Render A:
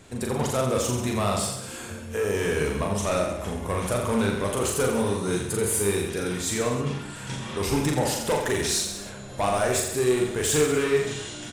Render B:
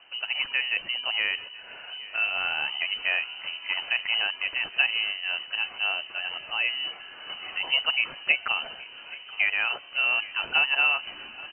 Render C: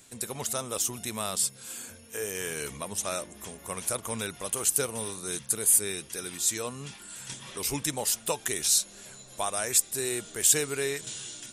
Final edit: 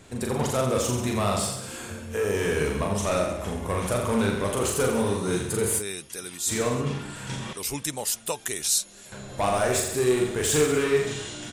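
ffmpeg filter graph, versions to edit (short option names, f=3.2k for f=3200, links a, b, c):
-filter_complex "[2:a]asplit=2[a][b];[0:a]asplit=3[c][d][e];[c]atrim=end=5.83[f];[a]atrim=start=5.77:end=6.52[g];[d]atrim=start=6.46:end=7.532[h];[b]atrim=start=7.528:end=9.122[i];[e]atrim=start=9.118[j];[f][g]acrossfade=d=0.06:c1=tri:c2=tri[k];[k][h]acrossfade=d=0.06:c1=tri:c2=tri[l];[l][i]acrossfade=d=0.004:c1=hsin:c2=hsin[m];[m][j]acrossfade=d=0.004:c1=hsin:c2=hsin"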